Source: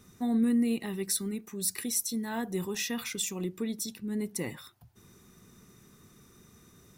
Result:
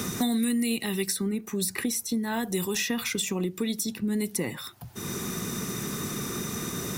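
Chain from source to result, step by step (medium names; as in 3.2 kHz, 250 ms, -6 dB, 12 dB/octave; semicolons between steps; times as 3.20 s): three bands compressed up and down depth 100%; trim +4.5 dB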